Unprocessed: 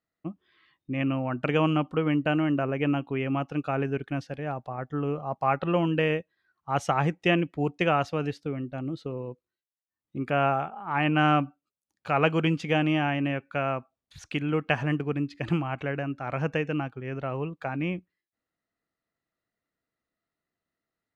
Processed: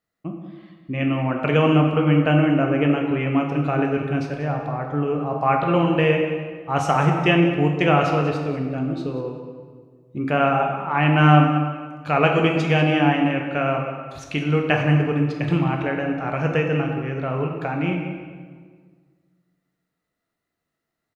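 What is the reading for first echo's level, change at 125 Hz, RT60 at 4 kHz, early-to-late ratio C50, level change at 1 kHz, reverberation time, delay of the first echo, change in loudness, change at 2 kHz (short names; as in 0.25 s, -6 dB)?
-14.5 dB, +9.0 dB, 1.2 s, 4.0 dB, +6.5 dB, 1.7 s, 0.191 s, +7.0 dB, +6.5 dB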